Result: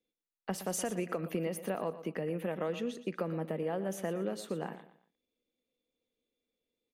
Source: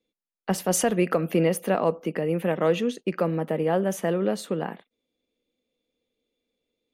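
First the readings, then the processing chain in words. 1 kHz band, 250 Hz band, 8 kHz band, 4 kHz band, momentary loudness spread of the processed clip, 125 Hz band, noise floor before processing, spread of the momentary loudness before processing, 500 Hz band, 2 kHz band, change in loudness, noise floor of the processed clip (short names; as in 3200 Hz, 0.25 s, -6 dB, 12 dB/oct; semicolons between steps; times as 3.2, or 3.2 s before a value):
-11.5 dB, -11.0 dB, -11.0 dB, -10.5 dB, 5 LU, -11.0 dB, under -85 dBFS, 7 LU, -11.5 dB, -11.0 dB, -11.5 dB, under -85 dBFS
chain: compressor, threshold -23 dBFS, peak gain reduction 7 dB; feedback echo 0.118 s, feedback 32%, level -13.5 dB; gain -7.5 dB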